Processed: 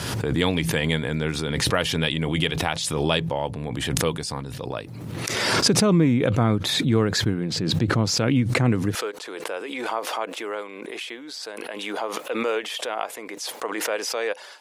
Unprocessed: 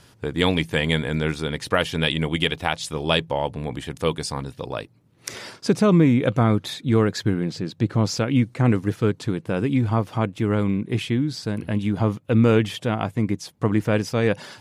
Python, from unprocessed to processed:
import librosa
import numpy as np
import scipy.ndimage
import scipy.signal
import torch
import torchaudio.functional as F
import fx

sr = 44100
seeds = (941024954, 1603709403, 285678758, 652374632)

y = fx.highpass(x, sr, hz=fx.steps((0.0, 61.0), (8.95, 460.0)), slope=24)
y = fx.pre_swell(y, sr, db_per_s=27.0)
y = y * librosa.db_to_amplitude(-2.5)